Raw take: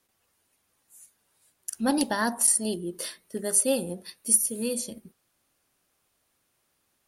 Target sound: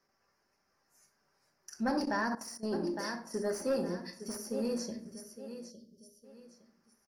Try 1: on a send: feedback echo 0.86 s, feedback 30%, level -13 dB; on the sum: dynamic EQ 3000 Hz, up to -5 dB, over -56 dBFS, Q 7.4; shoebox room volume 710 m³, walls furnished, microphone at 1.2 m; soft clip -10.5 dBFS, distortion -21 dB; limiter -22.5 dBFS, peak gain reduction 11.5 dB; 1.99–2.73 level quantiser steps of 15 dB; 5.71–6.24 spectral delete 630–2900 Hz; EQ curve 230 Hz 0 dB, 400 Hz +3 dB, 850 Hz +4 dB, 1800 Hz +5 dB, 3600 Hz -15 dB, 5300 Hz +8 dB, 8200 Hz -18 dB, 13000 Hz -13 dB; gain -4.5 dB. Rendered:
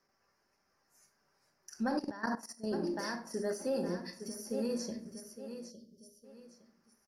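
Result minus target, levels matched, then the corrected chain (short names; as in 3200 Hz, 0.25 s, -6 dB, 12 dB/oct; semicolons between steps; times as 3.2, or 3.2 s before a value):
soft clip: distortion -9 dB
on a send: feedback echo 0.86 s, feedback 30%, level -13 dB; on the sum: dynamic EQ 3000 Hz, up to -5 dB, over -56 dBFS, Q 7.4; shoebox room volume 710 m³, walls furnished, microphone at 1.2 m; soft clip -19.5 dBFS, distortion -11 dB; limiter -22.5 dBFS, peak gain reduction 3 dB; 1.99–2.73 level quantiser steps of 15 dB; 5.71–6.24 spectral delete 630–2900 Hz; EQ curve 230 Hz 0 dB, 400 Hz +3 dB, 850 Hz +4 dB, 1800 Hz +5 dB, 3600 Hz -15 dB, 5300 Hz +8 dB, 8200 Hz -18 dB, 13000 Hz -13 dB; gain -4.5 dB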